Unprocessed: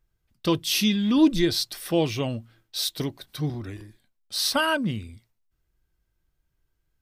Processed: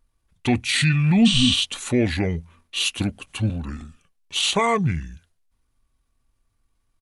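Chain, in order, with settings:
pitch shifter −5.5 semitones
in parallel at +3 dB: brickwall limiter −17.5 dBFS, peak gain reduction 9 dB
on the sum: healed spectral selection 0:01.28–0:01.54, 300–9,000 Hz after
pitch vibrato 0.82 Hz 7.9 cents
level −2.5 dB

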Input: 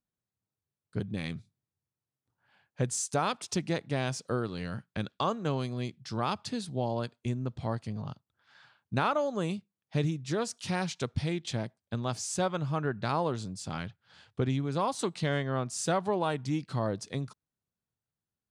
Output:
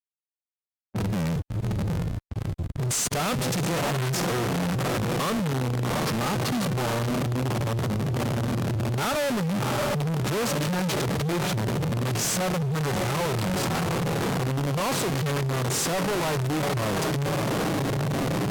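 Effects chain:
on a send: feedback delay with all-pass diffusion 680 ms, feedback 70%, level −12 dB
on the sum: comparator with hysteresis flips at −45.5 dBFS
high-pass filter 70 Hz 12 dB per octave
harmonic and percussive parts rebalanced percussive −14 dB
leveller curve on the samples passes 5
low-pass that shuts in the quiet parts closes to 1,100 Hz, open at −31.5 dBFS
level +3 dB

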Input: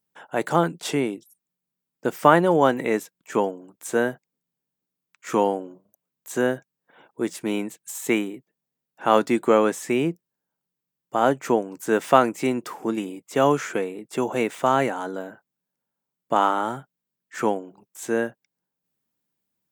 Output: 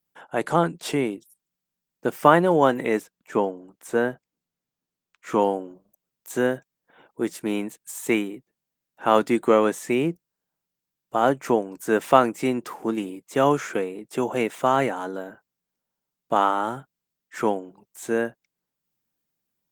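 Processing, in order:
0:03.00–0:05.40: high-shelf EQ 3,100 Hz → 5,100 Hz −7 dB
Opus 20 kbit/s 48,000 Hz

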